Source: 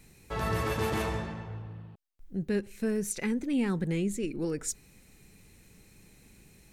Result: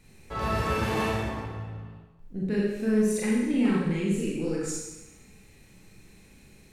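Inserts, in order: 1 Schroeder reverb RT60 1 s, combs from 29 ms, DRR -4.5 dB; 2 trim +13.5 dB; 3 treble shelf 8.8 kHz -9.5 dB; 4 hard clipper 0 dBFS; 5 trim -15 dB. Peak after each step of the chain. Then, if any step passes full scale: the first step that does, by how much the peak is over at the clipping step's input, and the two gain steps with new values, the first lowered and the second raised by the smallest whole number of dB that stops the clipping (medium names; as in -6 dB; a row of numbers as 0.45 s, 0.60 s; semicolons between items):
-10.5 dBFS, +3.0 dBFS, +3.0 dBFS, 0.0 dBFS, -15.0 dBFS; step 2, 3.0 dB; step 2 +10.5 dB, step 5 -12 dB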